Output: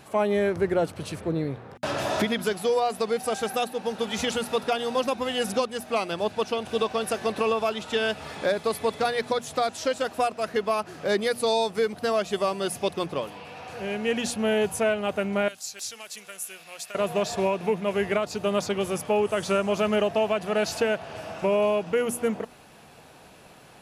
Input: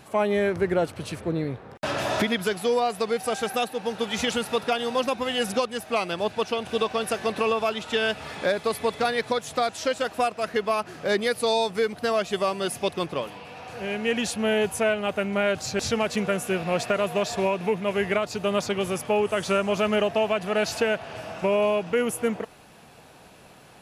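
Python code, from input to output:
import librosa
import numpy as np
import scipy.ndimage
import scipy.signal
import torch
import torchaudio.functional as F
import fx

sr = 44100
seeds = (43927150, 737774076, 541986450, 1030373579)

y = fx.pre_emphasis(x, sr, coefficient=0.97, at=(15.48, 16.95))
y = fx.hum_notches(y, sr, base_hz=60, count=4)
y = fx.dynamic_eq(y, sr, hz=2200.0, q=0.86, threshold_db=-41.0, ratio=4.0, max_db=-3)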